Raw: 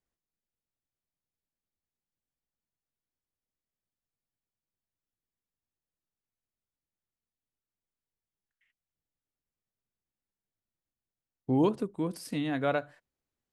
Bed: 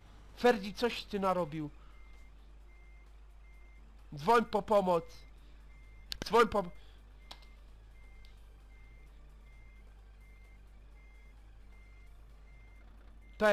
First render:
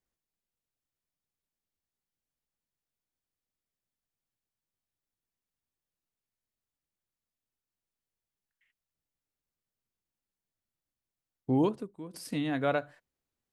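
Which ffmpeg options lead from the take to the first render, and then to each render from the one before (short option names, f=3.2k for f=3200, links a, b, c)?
-filter_complex "[0:a]asplit=2[a][b];[a]atrim=end=12.14,asetpts=PTS-STARTPTS,afade=t=out:st=11.57:d=0.57:c=qua:silence=0.237137[c];[b]atrim=start=12.14,asetpts=PTS-STARTPTS,afade=t=in:d=0.004:c=hsin:silence=0.237137[d];[c][d]concat=n=2:v=0:a=1"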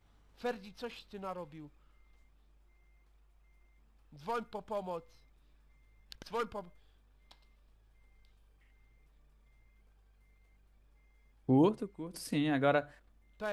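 -filter_complex "[1:a]volume=-10.5dB[a];[0:a][a]amix=inputs=2:normalize=0"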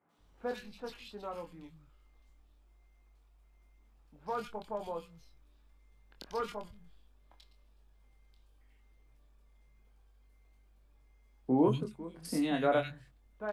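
-filter_complex "[0:a]asplit=2[a][b];[b]adelay=24,volume=-6dB[c];[a][c]amix=inputs=2:normalize=0,acrossover=split=160|1900[d][e][f];[f]adelay=90[g];[d]adelay=180[h];[h][e][g]amix=inputs=3:normalize=0"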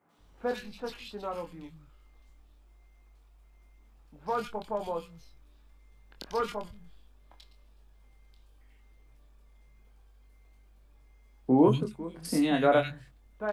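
-af "volume=5.5dB"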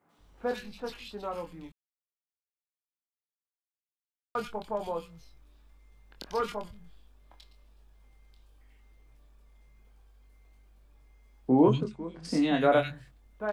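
-filter_complex "[0:a]asettb=1/sr,asplit=3[a][b][c];[a]atrim=end=11.624[d];[b]atrim=start=11.62:end=12.61,asetpts=PTS-STARTPTS,afade=t=in:d=0.004:c=qsin,afade=t=out:st=0.986:d=0.004:c=qsin,lowpass=f=7.3k:w=0.5412,lowpass=f=7.3k:w=1.3066[e];[c]atrim=start=12.606[f];[d][e]acrossfade=d=0.004:c1=hsin:c2=qsin[g];[g][f]acrossfade=d=0.004:c1=qsin:c2=hsin,asplit=3[h][i][j];[h]atrim=end=1.72,asetpts=PTS-STARTPTS,afade=t=out:st=1.716:d=0.004:c=hsin[k];[i]atrim=start=1.72:end=4.35,asetpts=PTS-STARTPTS,volume=0[l];[j]atrim=start=4.35,asetpts=PTS-STARTPTS,afade=t=in:d=0.004:c=hsin[m];[k][l][m]concat=n=3:v=0:a=1"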